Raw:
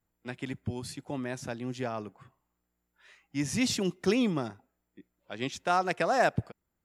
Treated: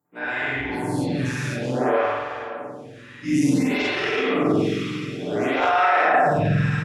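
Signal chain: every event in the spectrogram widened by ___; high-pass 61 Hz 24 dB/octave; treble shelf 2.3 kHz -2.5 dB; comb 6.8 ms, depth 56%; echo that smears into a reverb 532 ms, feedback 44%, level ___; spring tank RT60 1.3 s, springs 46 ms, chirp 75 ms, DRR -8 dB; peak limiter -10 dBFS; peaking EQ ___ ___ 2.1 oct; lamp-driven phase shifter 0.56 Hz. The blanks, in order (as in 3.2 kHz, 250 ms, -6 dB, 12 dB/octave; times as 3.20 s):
240 ms, -12 dB, 1.8 kHz, +2.5 dB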